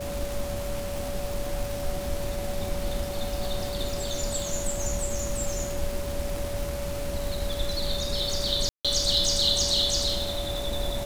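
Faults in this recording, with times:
crackle 320/s -31 dBFS
tone 570 Hz -33 dBFS
8.69–8.85 gap 0.156 s

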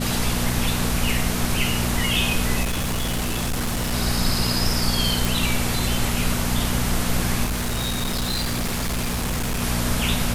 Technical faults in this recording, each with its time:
hum 60 Hz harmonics 4 -26 dBFS
2.62–3.94 clipped -20.5 dBFS
5.25 pop
7.44–9.63 clipped -21 dBFS

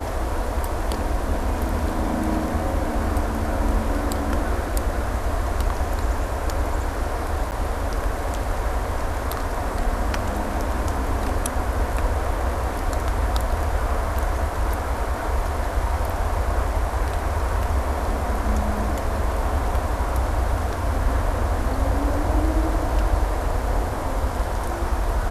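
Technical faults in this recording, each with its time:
7.51–7.52 gap 9.2 ms

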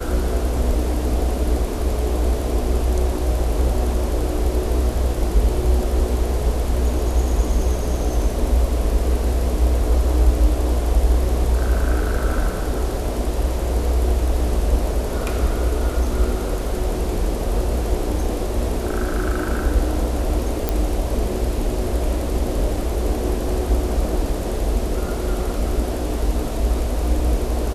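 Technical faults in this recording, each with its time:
20.69 pop -6 dBFS

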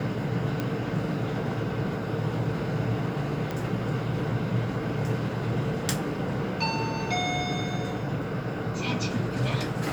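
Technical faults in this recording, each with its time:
0.6 pop -16 dBFS
3.51 pop -17 dBFS

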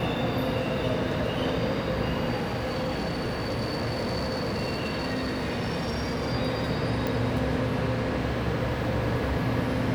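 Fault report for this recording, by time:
2.36–6.34 clipped -25 dBFS
7.07 pop

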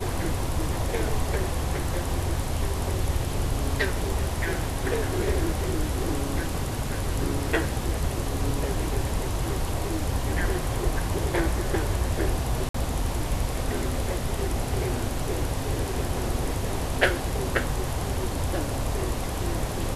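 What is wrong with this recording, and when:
12.69–12.74 gap 54 ms

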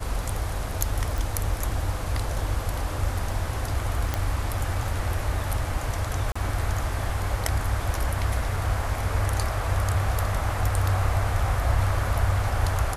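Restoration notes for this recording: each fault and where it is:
1.18 pop
4.14 pop -11 dBFS
6.32–6.36 gap 35 ms

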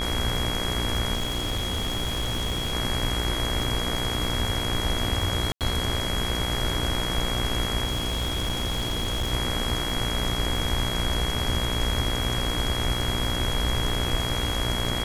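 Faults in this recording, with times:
buzz 60 Hz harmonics 39 -31 dBFS
crackle 39/s -30 dBFS
tone 3300 Hz -30 dBFS
1.15–2.74 clipped -23 dBFS
5.52–5.61 gap 88 ms
7.84–9.33 clipped -22.5 dBFS

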